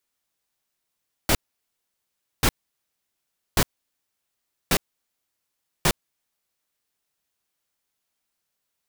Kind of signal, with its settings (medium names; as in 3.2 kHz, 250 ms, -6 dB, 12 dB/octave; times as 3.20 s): noise bursts pink, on 0.06 s, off 1.08 s, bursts 5, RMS -18.5 dBFS